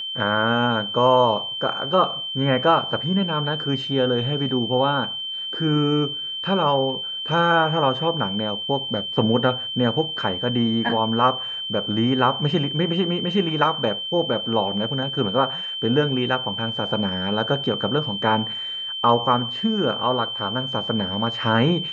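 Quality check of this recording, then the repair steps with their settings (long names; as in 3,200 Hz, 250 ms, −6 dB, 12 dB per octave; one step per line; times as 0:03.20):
whistle 3,100 Hz −27 dBFS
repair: notch filter 3,100 Hz, Q 30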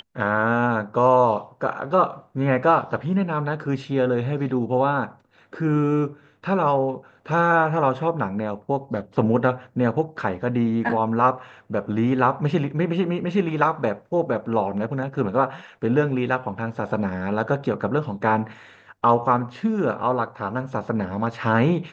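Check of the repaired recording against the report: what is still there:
none of them is left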